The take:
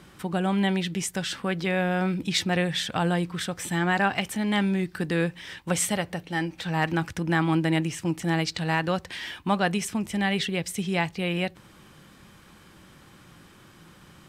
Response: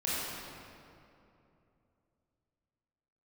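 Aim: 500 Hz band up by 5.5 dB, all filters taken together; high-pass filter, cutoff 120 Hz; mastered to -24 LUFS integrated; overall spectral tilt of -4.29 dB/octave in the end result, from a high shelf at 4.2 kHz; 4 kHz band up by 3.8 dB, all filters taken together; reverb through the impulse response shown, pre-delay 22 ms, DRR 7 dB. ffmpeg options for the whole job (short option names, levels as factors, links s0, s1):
-filter_complex "[0:a]highpass=120,equalizer=f=500:t=o:g=7,equalizer=f=4000:t=o:g=3,highshelf=f=4200:g=3.5,asplit=2[s0][s1];[1:a]atrim=start_sample=2205,adelay=22[s2];[s1][s2]afir=irnorm=-1:irlink=0,volume=0.188[s3];[s0][s3]amix=inputs=2:normalize=0,volume=0.944"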